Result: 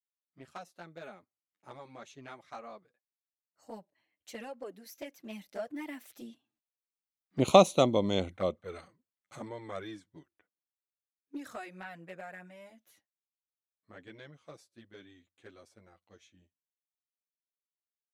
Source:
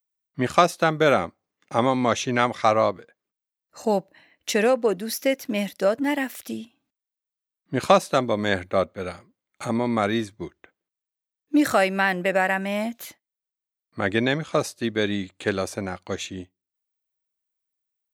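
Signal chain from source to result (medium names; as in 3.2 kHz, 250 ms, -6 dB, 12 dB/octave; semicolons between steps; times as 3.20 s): Doppler pass-by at 7.62 s, 16 m/s, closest 6.1 m; touch-sensitive flanger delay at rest 11 ms, full sweep at -26 dBFS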